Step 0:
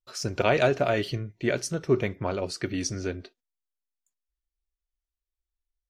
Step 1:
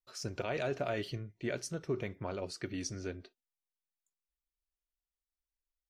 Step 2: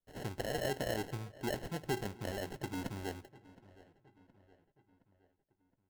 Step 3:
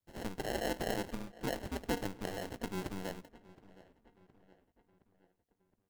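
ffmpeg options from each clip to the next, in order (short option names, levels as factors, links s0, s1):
-af "alimiter=limit=0.168:level=0:latency=1:release=75,volume=0.355"
-filter_complex "[0:a]acrusher=samples=37:mix=1:aa=0.000001,asplit=2[s0][s1];[s1]adelay=718,lowpass=f=3400:p=1,volume=0.1,asplit=2[s2][s3];[s3]adelay=718,lowpass=f=3400:p=1,volume=0.53,asplit=2[s4][s5];[s5]adelay=718,lowpass=f=3400:p=1,volume=0.53,asplit=2[s6][s7];[s7]adelay=718,lowpass=f=3400:p=1,volume=0.53[s8];[s0][s2][s4][s6][s8]amix=inputs=5:normalize=0,volume=0.891"
-af "aeval=exprs='val(0)*sin(2*PI*96*n/s)':c=same,volume=1.5"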